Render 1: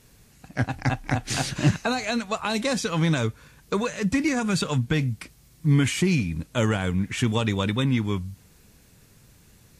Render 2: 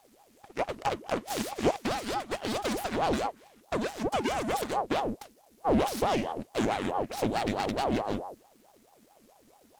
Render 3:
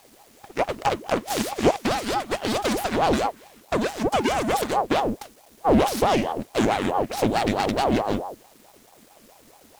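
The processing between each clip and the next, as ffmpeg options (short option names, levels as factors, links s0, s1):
-af "aeval=exprs='abs(val(0))':c=same,aeval=exprs='val(0)*sin(2*PI*520*n/s+520*0.6/4.6*sin(2*PI*4.6*n/s))':c=same,volume=0.708"
-af "acrusher=bits=9:mix=0:aa=0.000001,volume=2.24"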